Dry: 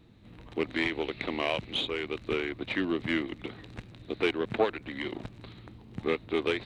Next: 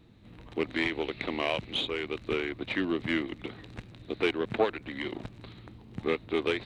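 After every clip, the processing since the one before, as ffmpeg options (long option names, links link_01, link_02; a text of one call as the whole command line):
ffmpeg -i in.wav -af anull out.wav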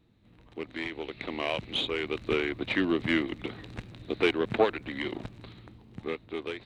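ffmpeg -i in.wav -af "dynaudnorm=framelen=340:gausssize=9:maxgain=12dB,volume=-8dB" out.wav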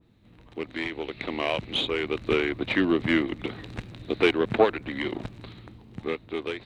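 ffmpeg -i in.wav -af "adynamicequalizer=threshold=0.00891:dfrequency=2000:dqfactor=0.7:tfrequency=2000:tqfactor=0.7:attack=5:release=100:ratio=0.375:range=2:mode=cutabove:tftype=highshelf,volume=4dB" out.wav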